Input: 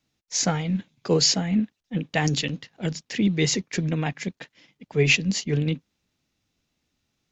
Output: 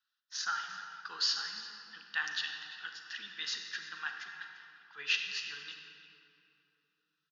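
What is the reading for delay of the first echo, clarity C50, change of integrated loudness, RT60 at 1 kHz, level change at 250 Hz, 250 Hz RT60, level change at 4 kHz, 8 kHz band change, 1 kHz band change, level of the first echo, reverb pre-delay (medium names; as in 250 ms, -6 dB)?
344 ms, 4.0 dB, -12.0 dB, 2.7 s, under -40 dB, 3.5 s, -7.5 dB, no reading, -8.5 dB, -17.5 dB, 33 ms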